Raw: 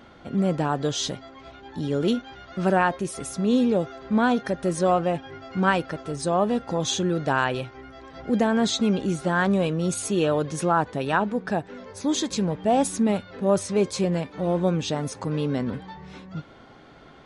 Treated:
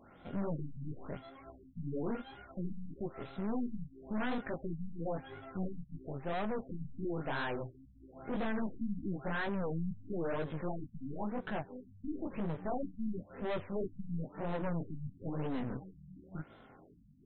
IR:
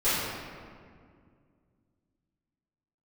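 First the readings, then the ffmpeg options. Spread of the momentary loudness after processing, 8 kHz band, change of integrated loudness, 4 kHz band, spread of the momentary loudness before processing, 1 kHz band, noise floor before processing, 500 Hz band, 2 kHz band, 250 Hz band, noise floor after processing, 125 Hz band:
11 LU, under -40 dB, -15.5 dB, -22.0 dB, 14 LU, -17.0 dB, -49 dBFS, -15.5 dB, -14.5 dB, -14.0 dB, -59 dBFS, -12.5 dB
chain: -af "flanger=delay=18:depth=6.1:speed=2,aeval=exprs='(tanh(39.8*val(0)+0.75)-tanh(0.75))/39.8':c=same,afftfilt=real='re*lt(b*sr/1024,240*pow(4200/240,0.5+0.5*sin(2*PI*0.98*pts/sr)))':imag='im*lt(b*sr/1024,240*pow(4200/240,0.5+0.5*sin(2*PI*0.98*pts/sr)))':win_size=1024:overlap=0.75,volume=-1.5dB"

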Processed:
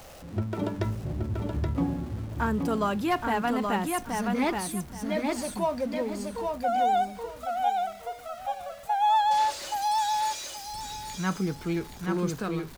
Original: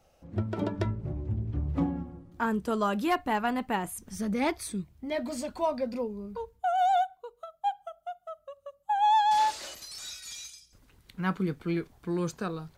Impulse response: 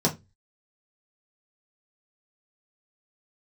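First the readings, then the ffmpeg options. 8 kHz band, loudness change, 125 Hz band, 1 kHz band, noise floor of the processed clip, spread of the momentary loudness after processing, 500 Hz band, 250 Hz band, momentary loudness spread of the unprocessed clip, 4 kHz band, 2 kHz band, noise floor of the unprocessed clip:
+4.0 dB, +1.5 dB, +2.0 dB, +2.0 dB, -45 dBFS, 11 LU, +2.5 dB, +2.5 dB, 17 LU, +3.0 dB, +2.0 dB, -66 dBFS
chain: -af "aeval=exprs='val(0)+0.5*0.00794*sgn(val(0))':c=same,aecho=1:1:825|1650|2475:0.631|0.139|0.0305"

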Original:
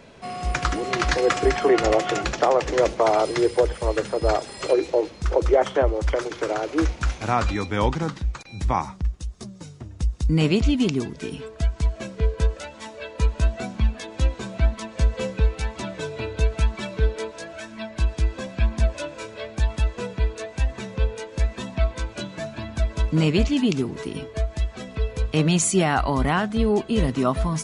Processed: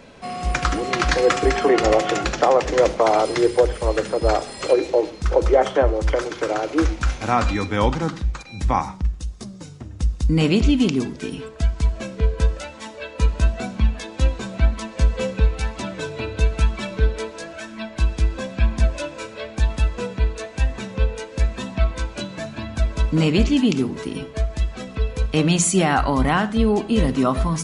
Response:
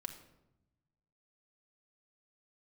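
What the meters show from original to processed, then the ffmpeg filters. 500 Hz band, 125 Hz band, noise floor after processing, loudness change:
+2.5 dB, +2.0 dB, -39 dBFS, +2.5 dB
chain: -filter_complex "[0:a]asplit=2[a][b];[1:a]atrim=start_sample=2205,afade=t=out:st=0.19:d=0.01,atrim=end_sample=8820[c];[b][c]afir=irnorm=-1:irlink=0,volume=1.5dB[d];[a][d]amix=inputs=2:normalize=0,volume=-2.5dB"

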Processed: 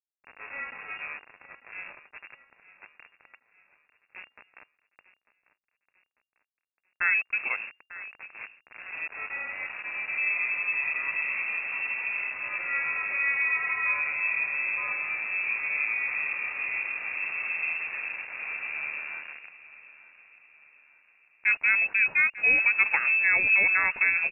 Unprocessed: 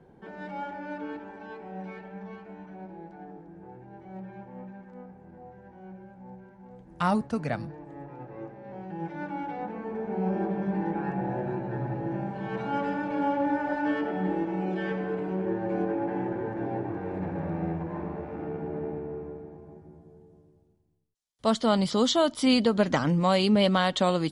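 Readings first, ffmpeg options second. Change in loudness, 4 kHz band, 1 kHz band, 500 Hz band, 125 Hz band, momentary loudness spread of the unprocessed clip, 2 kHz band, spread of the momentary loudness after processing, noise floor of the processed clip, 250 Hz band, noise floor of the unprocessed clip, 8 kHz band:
+3.0 dB, under -15 dB, -8.5 dB, -20.0 dB, under -25 dB, 22 LU, +15.0 dB, 20 LU, -84 dBFS, under -25 dB, -55 dBFS, n/a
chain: -af "aeval=exprs='val(0)*gte(abs(val(0)),0.0178)':c=same,aecho=1:1:896|1792|2688|3584:0.141|0.0664|0.0312|0.0147,lowpass=f=2.4k:t=q:w=0.5098,lowpass=f=2.4k:t=q:w=0.6013,lowpass=f=2.4k:t=q:w=0.9,lowpass=f=2.4k:t=q:w=2.563,afreqshift=-2800"

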